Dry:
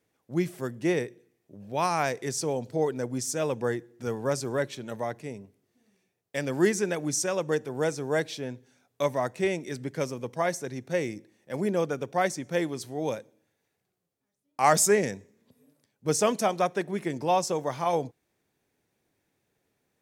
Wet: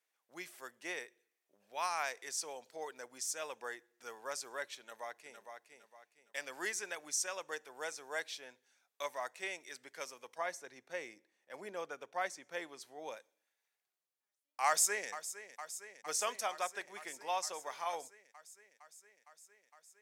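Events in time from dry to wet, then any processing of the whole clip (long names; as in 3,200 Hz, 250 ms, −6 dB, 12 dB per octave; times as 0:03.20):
0:04.79–0:05.39: delay throw 460 ms, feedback 35%, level −6 dB
0:10.38–0:13.17: spectral tilt −2 dB per octave
0:14.66–0:15.09: delay throw 460 ms, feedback 80%, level −13.5 dB
whole clip: high-pass filter 980 Hz 12 dB per octave; level −6 dB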